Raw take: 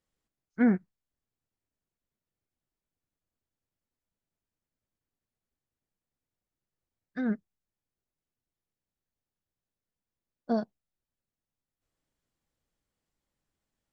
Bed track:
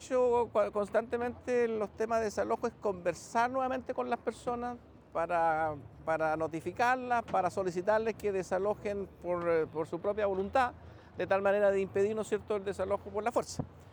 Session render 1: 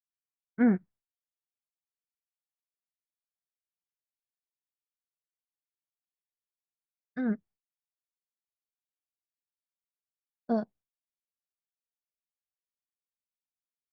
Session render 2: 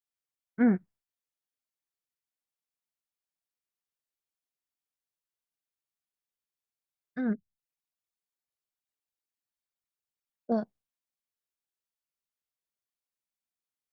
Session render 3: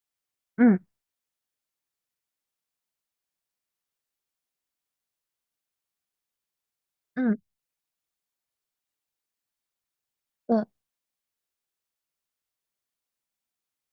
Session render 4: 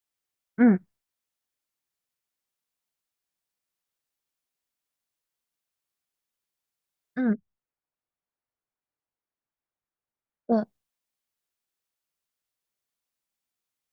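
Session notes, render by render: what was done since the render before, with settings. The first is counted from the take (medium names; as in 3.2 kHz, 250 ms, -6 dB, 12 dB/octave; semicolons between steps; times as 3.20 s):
expander -51 dBFS; treble shelf 4 kHz -12 dB
7.33–10.52 s: resonances exaggerated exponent 2
trim +5 dB
7.33–10.53 s: low-pass 1.6 kHz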